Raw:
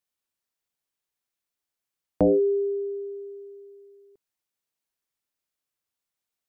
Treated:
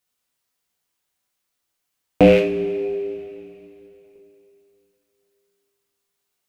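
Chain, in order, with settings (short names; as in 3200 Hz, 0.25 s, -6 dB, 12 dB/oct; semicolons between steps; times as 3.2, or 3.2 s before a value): rattling part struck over -31 dBFS, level -21 dBFS; two-slope reverb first 0.37 s, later 3.1 s, from -18 dB, DRR -0.5 dB; gain +6.5 dB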